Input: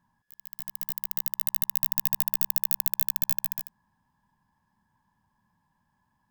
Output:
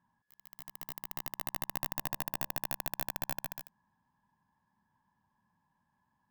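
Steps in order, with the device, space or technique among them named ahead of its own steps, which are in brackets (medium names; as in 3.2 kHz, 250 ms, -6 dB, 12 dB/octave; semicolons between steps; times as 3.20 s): 1.97–2.58 s: de-hum 76.48 Hz, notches 9; tube preamp driven hard (valve stage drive 8 dB, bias 0.6; bass shelf 97 Hz -8 dB; treble shelf 4.2 kHz -9 dB)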